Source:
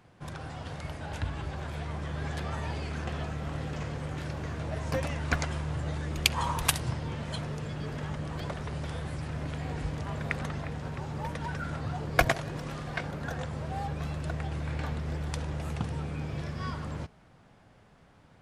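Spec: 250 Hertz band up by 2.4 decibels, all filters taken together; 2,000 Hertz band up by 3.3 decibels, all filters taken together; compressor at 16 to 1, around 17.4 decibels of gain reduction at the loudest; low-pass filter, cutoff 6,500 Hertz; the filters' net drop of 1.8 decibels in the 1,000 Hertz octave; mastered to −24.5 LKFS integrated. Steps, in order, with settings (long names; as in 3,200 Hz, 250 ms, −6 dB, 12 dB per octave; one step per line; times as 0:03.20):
low-pass filter 6,500 Hz
parametric band 250 Hz +4 dB
parametric band 1,000 Hz −4 dB
parametric band 2,000 Hz +5.5 dB
downward compressor 16 to 1, threshold −35 dBFS
level +15.5 dB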